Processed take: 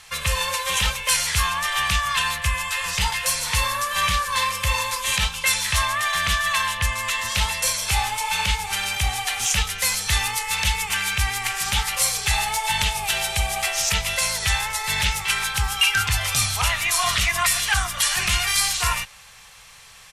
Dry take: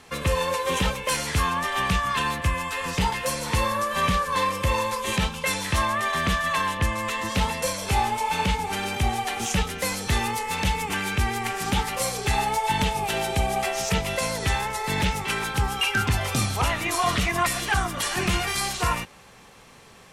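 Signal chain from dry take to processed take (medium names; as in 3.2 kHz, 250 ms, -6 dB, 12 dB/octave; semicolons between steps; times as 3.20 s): resampled via 32 kHz; amplifier tone stack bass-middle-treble 10-0-10; trim +9 dB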